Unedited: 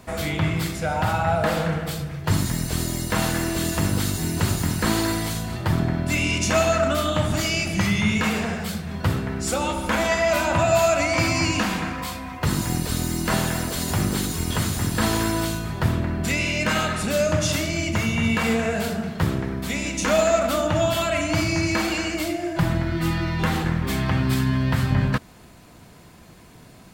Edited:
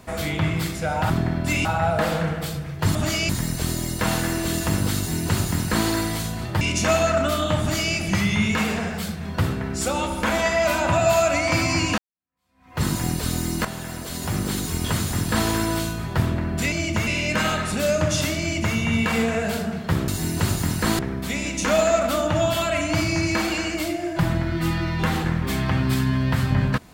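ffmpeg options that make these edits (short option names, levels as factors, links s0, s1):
-filter_complex "[0:a]asplit=12[s0][s1][s2][s3][s4][s5][s6][s7][s8][s9][s10][s11];[s0]atrim=end=1.102[s12];[s1]atrim=start=5.718:end=6.272[s13];[s2]atrim=start=1.098:end=2.402[s14];[s3]atrim=start=7.258:end=7.602[s15];[s4]atrim=start=2.398:end=5.722[s16];[s5]atrim=start=6.268:end=11.64,asetpts=PTS-STARTPTS,afade=t=out:st=5.368:d=0.004:c=hsin[s17];[s6]atrim=start=11.64:end=13.31,asetpts=PTS-STARTPTS,afade=t=in:d=0.83:c=exp,afade=t=out:st=1.666:d=0.004:c=hsin:silence=0.251189[s18];[s7]atrim=start=13.31:end=16.382,asetpts=PTS-STARTPTS,afade=t=in:d=1.08:silence=0.251189[s19];[s8]atrim=start=17.708:end=18.062[s20];[s9]atrim=start=16.378:end=19.392[s21];[s10]atrim=start=4.078:end=4.992[s22];[s11]atrim=start=19.388[s23];[s12][s13]acrossfade=d=0.004:c1=hsin:c2=hsin[s24];[s24][s14]acrossfade=d=0.004:c1=hsin:c2=hsin[s25];[s25][s15]acrossfade=d=0.004:c1=hsin:c2=hsin[s26];[s26][s16]acrossfade=d=0.004:c1=hsin:c2=hsin[s27];[s17][s18][s19]concat=n=3:v=0:a=1[s28];[s27][s28]acrossfade=d=0.004:c1=hsin:c2=hsin[s29];[s29][s20]acrossfade=d=0.004:c1=hsin:c2=hsin[s30];[s30][s21]acrossfade=d=0.004:c1=hsin:c2=hsin[s31];[s31][s22]acrossfade=d=0.004:c1=hsin:c2=hsin[s32];[s32][s23]acrossfade=d=0.004:c1=hsin:c2=hsin"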